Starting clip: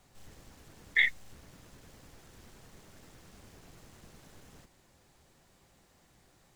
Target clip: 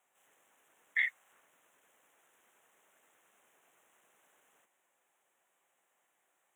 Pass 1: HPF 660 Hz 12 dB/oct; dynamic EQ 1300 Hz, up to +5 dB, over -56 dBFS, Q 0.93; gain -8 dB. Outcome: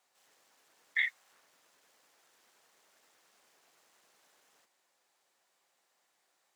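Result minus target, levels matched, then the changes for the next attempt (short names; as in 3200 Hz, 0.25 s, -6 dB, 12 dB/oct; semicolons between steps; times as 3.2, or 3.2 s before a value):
4000 Hz band +5.5 dB
add after dynamic EQ: Butterworth band-stop 4700 Hz, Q 1.3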